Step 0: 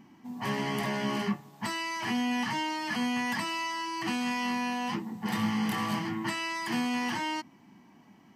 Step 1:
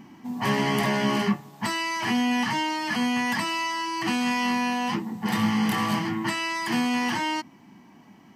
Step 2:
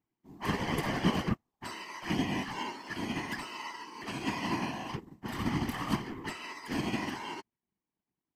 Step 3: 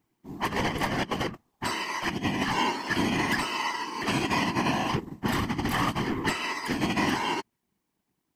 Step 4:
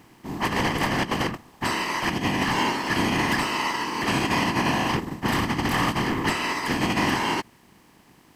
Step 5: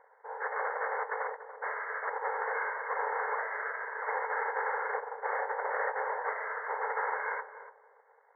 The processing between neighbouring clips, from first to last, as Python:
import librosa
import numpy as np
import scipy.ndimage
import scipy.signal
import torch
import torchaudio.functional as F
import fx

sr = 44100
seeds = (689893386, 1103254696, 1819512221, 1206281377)

y1 = fx.rider(x, sr, range_db=4, speed_s=2.0)
y1 = F.gain(torch.from_numpy(y1), 5.5).numpy()
y2 = fx.leveller(y1, sr, passes=1)
y2 = fx.whisperise(y2, sr, seeds[0])
y2 = fx.upward_expand(y2, sr, threshold_db=-40.0, expansion=2.5)
y2 = F.gain(torch.from_numpy(y2), -5.5).numpy()
y3 = fx.over_compress(y2, sr, threshold_db=-35.0, ratio=-0.5)
y3 = F.gain(torch.from_numpy(y3), 9.0).numpy()
y4 = fx.bin_compress(y3, sr, power=0.6)
y5 = y4 * np.sin(2.0 * np.pi * 650.0 * np.arange(len(y4)) / sr)
y5 = fx.brickwall_bandpass(y5, sr, low_hz=420.0, high_hz=2200.0)
y5 = fx.echo_filtered(y5, sr, ms=288, feedback_pct=30, hz=810.0, wet_db=-9)
y5 = F.gain(torch.from_numpy(y5), -4.5).numpy()